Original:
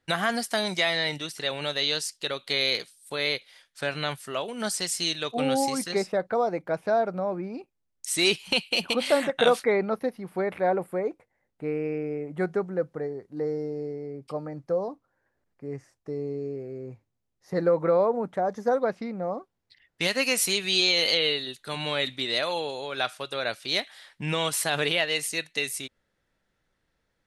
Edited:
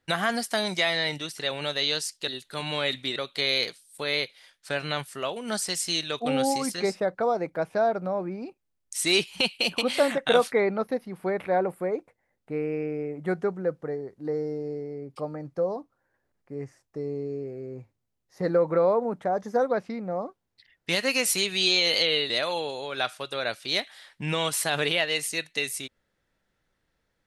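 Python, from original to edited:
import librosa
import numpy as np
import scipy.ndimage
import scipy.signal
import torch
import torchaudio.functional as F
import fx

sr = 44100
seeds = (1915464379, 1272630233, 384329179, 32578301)

y = fx.edit(x, sr, fx.move(start_s=21.42, length_s=0.88, to_s=2.28), tone=tone)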